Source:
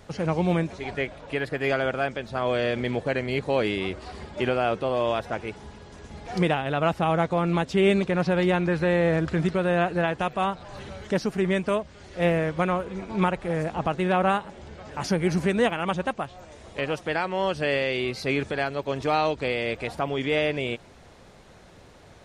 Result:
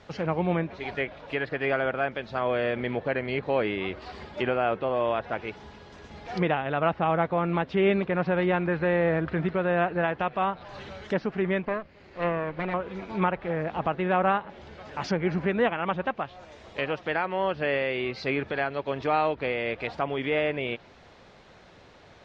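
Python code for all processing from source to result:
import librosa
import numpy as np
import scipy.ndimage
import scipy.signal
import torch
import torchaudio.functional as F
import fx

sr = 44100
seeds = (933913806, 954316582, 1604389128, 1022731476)

y = fx.chain(x, sr, fx.lower_of_two(delay_ms=0.44),
    fx.lowpass(hz=1800.0, slope=6),
    fx.peak_eq(hz=65.0, db=-5.0, octaves=2.4), at=(11.65, 12.74))
y = fx.env_lowpass_down(y, sr, base_hz=2300.0, full_db=-22.5)
y = scipy.signal.sosfilt(scipy.signal.bessel(4, 3800.0, 'lowpass', norm='mag', fs=sr, output='sos'), y)
y = fx.tilt_eq(y, sr, slope=1.5)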